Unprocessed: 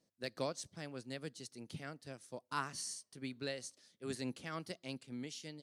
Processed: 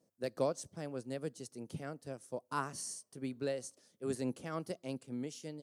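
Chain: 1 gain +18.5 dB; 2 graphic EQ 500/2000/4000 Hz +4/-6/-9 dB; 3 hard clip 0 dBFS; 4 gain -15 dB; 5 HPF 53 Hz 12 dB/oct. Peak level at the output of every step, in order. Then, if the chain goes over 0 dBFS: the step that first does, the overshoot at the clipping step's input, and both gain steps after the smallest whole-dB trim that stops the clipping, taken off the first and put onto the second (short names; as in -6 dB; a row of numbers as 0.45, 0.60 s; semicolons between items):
-4.0, -5.0, -5.0, -20.0, -20.5 dBFS; no overload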